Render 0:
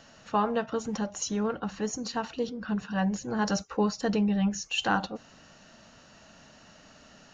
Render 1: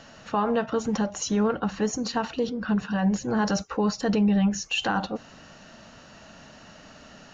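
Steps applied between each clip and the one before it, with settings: limiter -22 dBFS, peak gain reduction 9 dB; high shelf 6200 Hz -7 dB; gain +6.5 dB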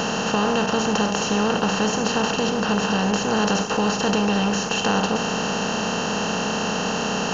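per-bin compression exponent 0.2; gain -3.5 dB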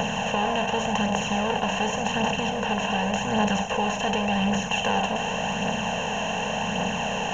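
fixed phaser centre 1300 Hz, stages 6; phaser 0.88 Hz, delay 3.2 ms, feedback 35%

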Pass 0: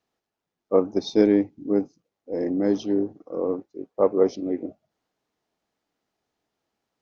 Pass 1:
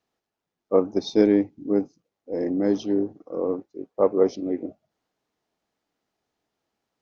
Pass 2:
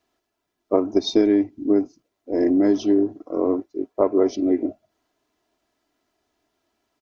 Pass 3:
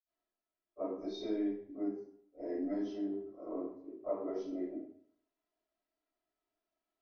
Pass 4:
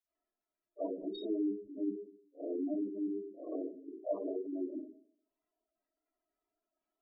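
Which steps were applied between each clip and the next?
nothing audible
comb 3 ms, depth 59%; compressor 6:1, threshold -19 dBFS, peak gain reduction 9 dB; gain +5.5 dB
reverb RT60 0.65 s, pre-delay 48 ms; gain -7 dB
wow and flutter 21 cents; spectral gate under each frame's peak -15 dB strong; gain +1 dB

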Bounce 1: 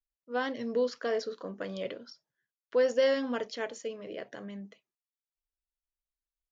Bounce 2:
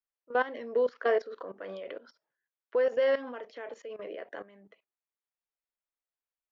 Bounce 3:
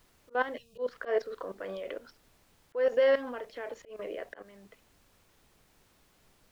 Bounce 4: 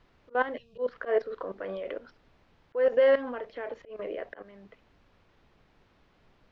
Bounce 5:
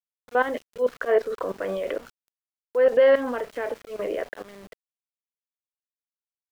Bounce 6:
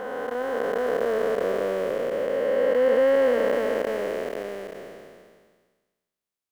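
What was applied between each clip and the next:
three-band isolator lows -21 dB, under 320 Hz, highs -20 dB, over 2800 Hz; level quantiser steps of 16 dB; gain +8 dB
added noise pink -67 dBFS; spectral gain 0.57–0.78, 210–2400 Hz -28 dB; auto swell 0.143 s; gain +2 dB
air absorption 240 m; gain +3.5 dB
in parallel at +2.5 dB: limiter -20.5 dBFS, peak gain reduction 8 dB; on the sum: sample gate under -42.5 dBFS
time blur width 1.12 s; gain +8.5 dB

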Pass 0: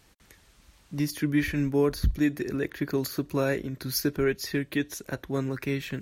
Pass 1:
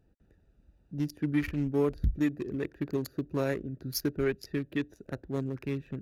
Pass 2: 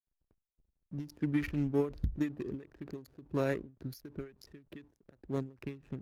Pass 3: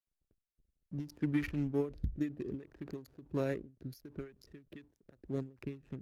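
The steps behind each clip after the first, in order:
Wiener smoothing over 41 samples; gain -3 dB
backlash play -52.5 dBFS; ending taper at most 170 dB/s; gain -1.5 dB
rotary speaker horn 0.6 Hz, later 6.3 Hz, at 3.98

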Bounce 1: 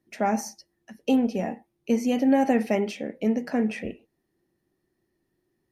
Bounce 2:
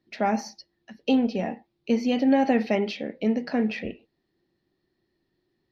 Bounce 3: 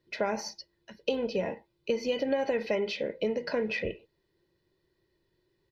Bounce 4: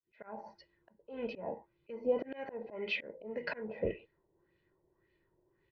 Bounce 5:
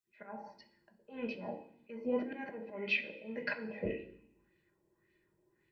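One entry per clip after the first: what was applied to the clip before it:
resonant high shelf 6200 Hz -14 dB, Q 3
comb 2 ms, depth 71%; compressor 4:1, threshold -26 dBFS, peak gain reduction 9 dB
opening faded in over 0.62 s; auto swell 0.301 s; LFO low-pass sine 1.8 Hz 740–2600 Hz; gain -1.5 dB
reverb RT60 0.65 s, pre-delay 3 ms, DRR 4 dB; gain +1 dB

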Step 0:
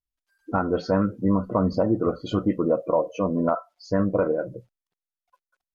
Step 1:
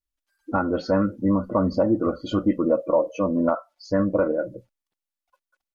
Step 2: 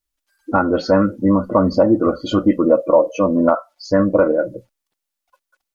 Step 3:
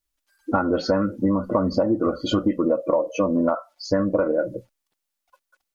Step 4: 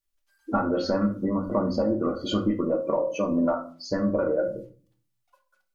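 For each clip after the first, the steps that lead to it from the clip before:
comb 3.5 ms, depth 45%
tone controls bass -3 dB, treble +2 dB; gain +7.5 dB
compressor, threshold -17 dBFS, peak gain reduction 9.5 dB
shoebox room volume 290 m³, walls furnished, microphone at 1.2 m; gain -5.5 dB

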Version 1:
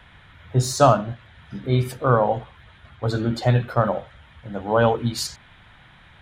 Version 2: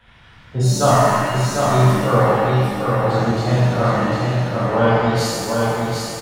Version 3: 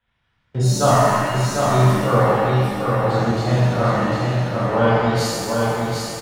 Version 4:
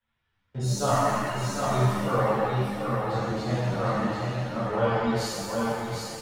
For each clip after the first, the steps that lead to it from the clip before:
echo 0.75 s -4 dB; shimmer reverb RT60 1.8 s, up +7 st, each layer -8 dB, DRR -10.5 dB; gain -7.5 dB
gate with hold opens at -32 dBFS; gain -1 dB
ensemble effect; gain -5 dB

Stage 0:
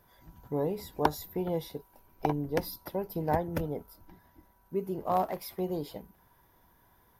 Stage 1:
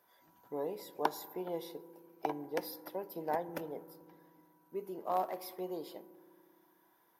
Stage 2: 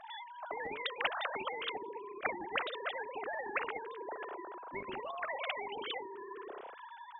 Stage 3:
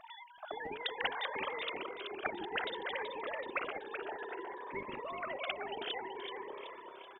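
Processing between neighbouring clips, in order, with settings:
HPF 340 Hz 12 dB/oct; on a send at -16 dB: reverb RT60 2.0 s, pre-delay 3 ms; on the sum: gain -5 dB
sine-wave speech; spectral compressor 10:1; gain +3.5 dB
feedback echo 0.379 s, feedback 52%, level -6.5 dB; cascading phaser rising 0.59 Hz; gain +1 dB

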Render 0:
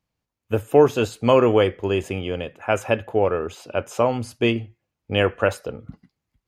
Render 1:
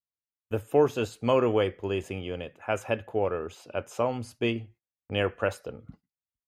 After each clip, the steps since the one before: gate -45 dBFS, range -21 dB; gain -7.5 dB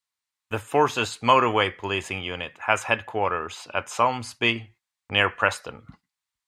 graphic EQ 500/1000/2000/4000/8000 Hz -4/+12/+9/+9/+9 dB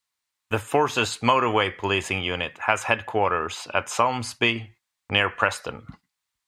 compressor 4:1, threshold -21 dBFS, peak gain reduction 8 dB; gain +4.5 dB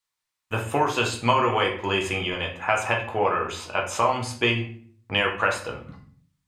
shoebox room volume 57 m³, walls mixed, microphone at 0.62 m; gain -3.5 dB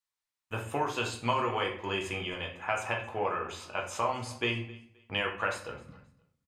feedback echo 0.263 s, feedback 25%, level -22 dB; gain -8.5 dB

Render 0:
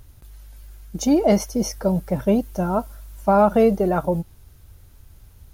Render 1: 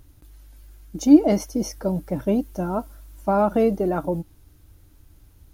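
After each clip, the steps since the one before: bell 300 Hz +13.5 dB 0.29 oct; gain -4.5 dB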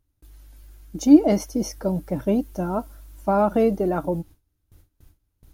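gate with hold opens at -40 dBFS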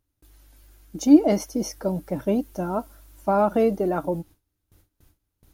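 low shelf 130 Hz -8 dB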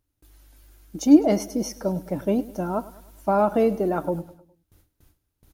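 feedback echo 0.103 s, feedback 48%, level -18.5 dB

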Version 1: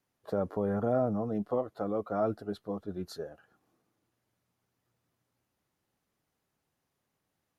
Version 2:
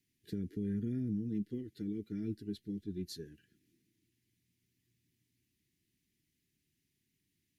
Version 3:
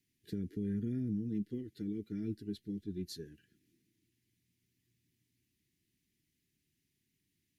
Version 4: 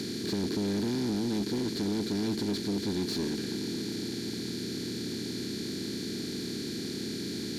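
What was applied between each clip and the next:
inverse Chebyshev band-stop 530–1300 Hz, stop band 40 dB; in parallel at +2 dB: compressor, threshold -42 dBFS, peak gain reduction 12.5 dB; on the sum: gain -5 dB
nothing audible
per-bin compression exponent 0.2; overdrive pedal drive 21 dB, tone 3600 Hz, clips at -21 dBFS

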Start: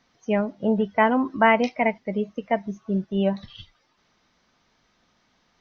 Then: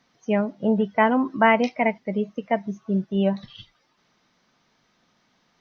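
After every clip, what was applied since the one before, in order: resonant low shelf 100 Hz -7 dB, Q 1.5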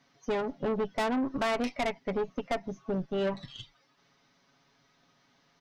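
comb 7.2 ms, depth 67%; compressor 2:1, threshold -23 dBFS, peak gain reduction 6.5 dB; tube stage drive 27 dB, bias 0.75; gain +1.5 dB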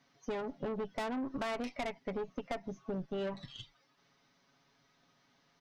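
compressor, threshold -30 dBFS, peak gain reduction 5 dB; gain -3.5 dB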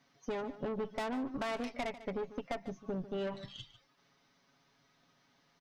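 echo 0.147 s -15 dB

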